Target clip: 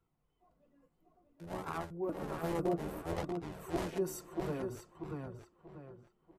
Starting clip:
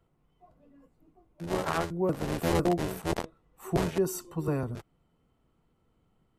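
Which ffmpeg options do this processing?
-filter_complex "[0:a]bass=f=250:g=-3,treble=f=4000:g=0,asplit=2[s0][s1];[s1]adelay=638,lowpass=f=3400:p=1,volume=0.668,asplit=2[s2][s3];[s3]adelay=638,lowpass=f=3400:p=1,volume=0.37,asplit=2[s4][s5];[s5]adelay=638,lowpass=f=3400:p=1,volume=0.37,asplit=2[s6][s7];[s7]adelay=638,lowpass=f=3400:p=1,volume=0.37,asplit=2[s8][s9];[s9]adelay=638,lowpass=f=3400:p=1,volume=0.37[s10];[s2][s4][s6][s8][s10]amix=inputs=5:normalize=0[s11];[s0][s11]amix=inputs=2:normalize=0,flanger=delay=0.8:depth=5.1:regen=-39:speed=0.59:shape=sinusoidal,asettb=1/sr,asplit=3[s12][s13][s14];[s12]atrim=end=1.434[s15];[s13]atrim=start=1.43:end=3.17,asetpts=PTS-STARTPTS,afade=t=in:d=0.004:c=qsin,afade=t=out:st=1.736:d=0.004:c=qsin,equalizer=f=5000:w=0.43:g=-7[s16];[s14]atrim=start=3.166[s17];[s15][s16]acrossfade=d=0.004:c1=hsin:c2=qsin[s18];[s18][s17]acrossfade=d=0.004:c1=qsin:c2=hsin,volume=0.596"

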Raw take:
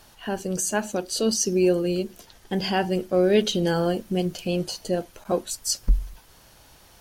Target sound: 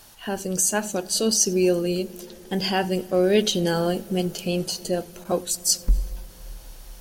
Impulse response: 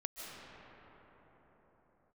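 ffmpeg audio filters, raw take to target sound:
-filter_complex "[0:a]highshelf=f=5000:g=8,asplit=2[s0][s1];[1:a]atrim=start_sample=2205,lowshelf=f=200:g=11,adelay=91[s2];[s1][s2]afir=irnorm=-1:irlink=0,volume=0.0841[s3];[s0][s3]amix=inputs=2:normalize=0"

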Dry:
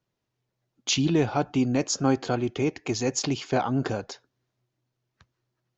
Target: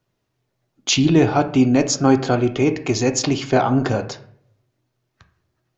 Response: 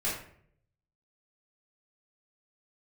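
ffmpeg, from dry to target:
-filter_complex "[0:a]asplit=2[s0][s1];[1:a]atrim=start_sample=2205,lowpass=2900[s2];[s1][s2]afir=irnorm=-1:irlink=0,volume=0.224[s3];[s0][s3]amix=inputs=2:normalize=0,volume=2.11"

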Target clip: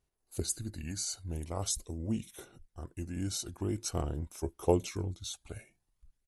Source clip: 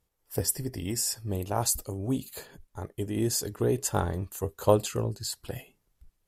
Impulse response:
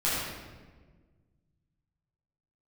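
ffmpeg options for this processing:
-af "aphaser=in_gain=1:out_gain=1:delay=1.1:decay=0.32:speed=0.45:type=sinusoidal,asetrate=37084,aresample=44100,atempo=1.18921,volume=0.422"

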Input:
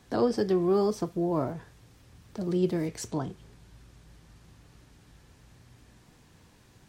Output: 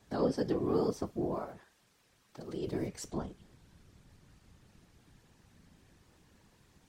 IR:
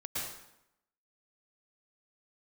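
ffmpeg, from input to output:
-filter_complex "[0:a]asettb=1/sr,asplit=3[s0][s1][s2];[s0]atrim=end=1.344[s3];[s1]atrim=start=1.34:end=2.67,asetpts=PTS-STARTPTS,afade=t=in:d=0.004:c=qsin,afade=t=out:st=1.326:d=0.004:c=qsin,highpass=f=600:p=1[s4];[s2]atrim=start=2.666[s5];[s3][s4]acrossfade=d=0.004:c1=hsin:c2=qsin[s6];[s6][s5]acrossfade=d=0.004:c1=qsin:c2=hsin,afftfilt=real='hypot(re,im)*cos(2*PI*random(0))':imag='hypot(re,im)*sin(2*PI*random(1))':win_size=512:overlap=0.75"

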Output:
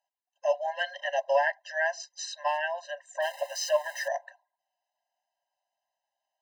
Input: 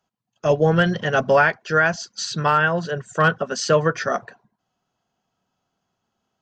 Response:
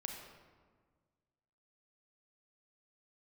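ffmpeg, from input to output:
-filter_complex "[0:a]asettb=1/sr,asplit=3[s0][s1][s2];[s0]atrim=end=3.224[s3];[s1]atrim=start=3.22:end=4.08,asetpts=PTS-STARTPTS,afade=t=in:d=0.004:c=qsin,afade=t=out:st=0.856:d=0.004:c=qsin,aeval=exprs='val(0)+0.5*0.0398*sgn(val(0))':c=same[s4];[s2]atrim=start=4.076[s5];[s3][s4]acrossfade=d=0.004:c1=hsin:c2=qsin[s6];[s6][s5]acrossfade=d=0.004:c1=qsin:c2=hsin,afftfilt=real='re*eq(mod(floor(b*sr/1024/530),2),1)':imag='im*eq(mod(floor(b*sr/1024/530),2),1)':win_size=1024:overlap=0.75,volume=0.501"

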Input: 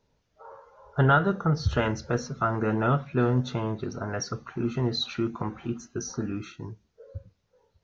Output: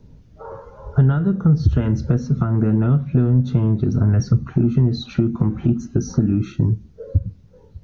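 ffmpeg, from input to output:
-filter_complex "[0:a]asettb=1/sr,asplit=3[s0][s1][s2];[s0]atrim=end=3.824[s3];[s1]atrim=start=3.82:end=4.47,asetpts=PTS-STARTPTS,afade=t=in:d=0.004:c=qsin,afade=t=out:st=0.646:d=0.004:c=qsin,asubboost=boost=10.5:cutoff=220[s4];[s2]atrim=start=4.466[s5];[s3][s4]acrossfade=d=0.004:c1=hsin:c2=qsin[s6];[s6][s5]acrossfade=d=0.004:c1=qsin:c2=hsin,acompressor=threshold=0.0112:ratio=5,acrossover=split=290|740[s7][s8][s9];[s7]aeval=exprs='0.178*sin(PI/2*6.31*val(0)/0.178)':c=same[s10];[s10][s8][s9]amix=inputs=3:normalize=0,volume=2.51"

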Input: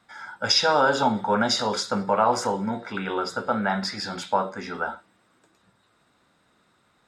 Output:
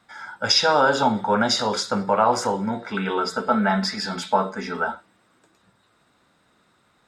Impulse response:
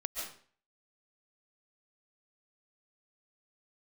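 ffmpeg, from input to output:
-filter_complex "[0:a]asettb=1/sr,asplit=3[s0][s1][s2];[s0]atrim=end=2.924[s3];[s1]atrim=start=2.92:end=4.92,asetpts=PTS-STARTPTS,afade=t=in:d=0.004:c=qsin,afade=t=out:st=1.996:d=0.004:c=qsin,aecho=1:1:4.6:0.63,atrim=end_sample=88200[s4];[s2]atrim=start=4.916[s5];[s3][s4]acrossfade=d=0.004:c1=hsin:c2=qsin[s6];[s6][s5]acrossfade=d=0.004:c1=qsin:c2=hsin,volume=1.26"

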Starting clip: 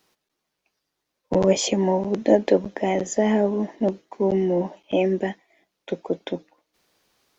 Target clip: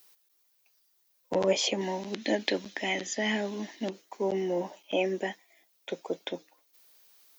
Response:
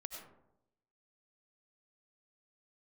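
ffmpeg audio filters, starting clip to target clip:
-filter_complex "[0:a]aemphasis=mode=production:type=riaa,acrossover=split=4600[s0][s1];[s1]acompressor=threshold=0.00282:ratio=4:attack=1:release=60[s2];[s0][s2]amix=inputs=2:normalize=0,asettb=1/sr,asplit=3[s3][s4][s5];[s3]atrim=end=1.814[s6];[s4]atrim=start=1.81:end=3.9,asetpts=PTS-STARTPTS,afade=t=in:d=0.004:c=qsin,afade=t=out:st=2.086:d=0.004:c=qsin,equalizer=f=125:t=o:w=1:g=-5,equalizer=f=250:t=o:w=1:g=4,equalizer=f=500:t=o:w=1:g=-8,equalizer=f=1000:t=o:w=1:g=-4,equalizer=f=2000:t=o:w=1:g=4,equalizer=f=4000:t=o:w=1:g=8[s7];[s5]atrim=start=3.896[s8];[s6][s7]acrossfade=d=0.004:c1=hsin:c2=qsin[s9];[s9][s8]acrossfade=d=0.004:c1=qsin:c2=hsin,volume=0.631"

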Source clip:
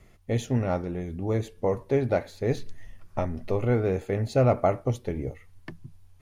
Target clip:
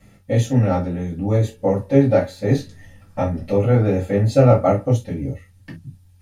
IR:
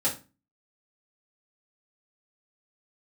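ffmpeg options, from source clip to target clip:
-filter_complex "[0:a]asetnsamples=n=441:p=0,asendcmd='4.95 equalizer g -9.5',equalizer=f=780:t=o:w=2.8:g=-3[s0];[1:a]atrim=start_sample=2205,atrim=end_sample=3528[s1];[s0][s1]afir=irnorm=-1:irlink=0"

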